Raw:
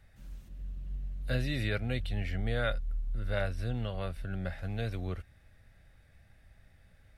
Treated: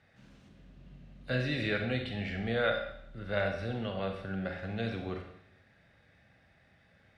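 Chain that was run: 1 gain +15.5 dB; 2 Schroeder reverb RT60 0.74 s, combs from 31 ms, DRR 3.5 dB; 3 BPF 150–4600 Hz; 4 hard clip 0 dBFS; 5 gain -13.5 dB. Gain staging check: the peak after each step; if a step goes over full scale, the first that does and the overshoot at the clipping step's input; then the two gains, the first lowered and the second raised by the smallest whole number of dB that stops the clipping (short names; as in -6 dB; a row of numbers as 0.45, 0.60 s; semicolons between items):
-1.0, -0.5, -3.5, -3.5, -17.0 dBFS; no overload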